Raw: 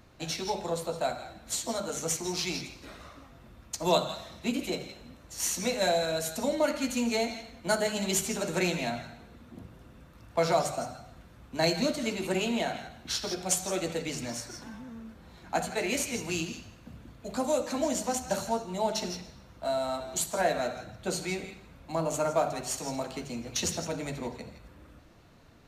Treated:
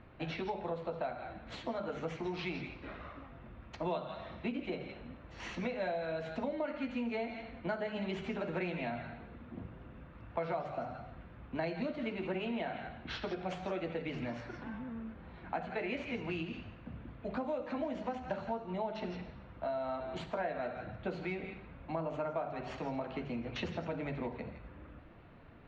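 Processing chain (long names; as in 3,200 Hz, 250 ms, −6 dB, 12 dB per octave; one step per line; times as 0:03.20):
low-pass filter 2,800 Hz 24 dB per octave
downward compressor 4 to 1, threshold −36 dBFS, peak gain reduction 13.5 dB
level +1 dB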